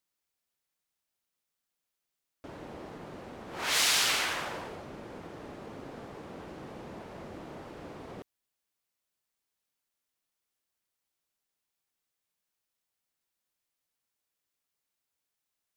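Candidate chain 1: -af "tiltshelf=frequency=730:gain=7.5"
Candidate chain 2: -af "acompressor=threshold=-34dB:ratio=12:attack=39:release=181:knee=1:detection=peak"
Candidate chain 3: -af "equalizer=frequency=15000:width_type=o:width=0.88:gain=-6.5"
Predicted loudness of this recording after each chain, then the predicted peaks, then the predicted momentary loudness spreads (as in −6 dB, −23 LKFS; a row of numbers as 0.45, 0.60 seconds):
−37.5, −39.5, −28.5 LKFS; −19.0, −21.0, −13.5 dBFS; 11, 13, 20 LU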